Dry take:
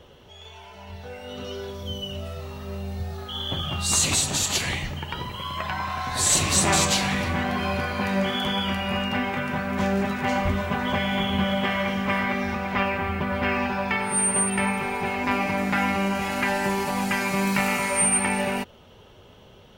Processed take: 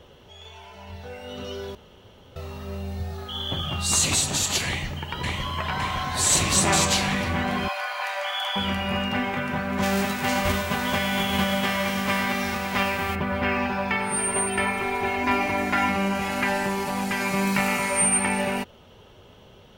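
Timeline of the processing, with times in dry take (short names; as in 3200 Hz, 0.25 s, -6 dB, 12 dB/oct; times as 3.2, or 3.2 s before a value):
1.75–2.36 room tone
4.67–5.47 echo throw 0.56 s, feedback 75%, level -2 dB
7.68–8.56 steep high-pass 610 Hz 48 dB/oct
9.82–13.14 spectral whitening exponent 0.6
14.15–15.89 comb 2.9 ms, depth 62%
16.63–17.2 tube stage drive 16 dB, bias 0.35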